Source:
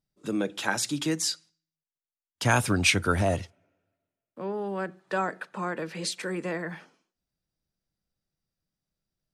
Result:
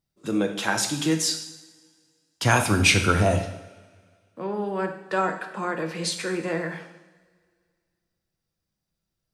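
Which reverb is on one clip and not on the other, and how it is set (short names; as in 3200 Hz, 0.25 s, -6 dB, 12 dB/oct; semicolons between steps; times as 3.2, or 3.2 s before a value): two-slope reverb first 0.79 s, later 2.2 s, from -19 dB, DRR 4 dB; gain +2.5 dB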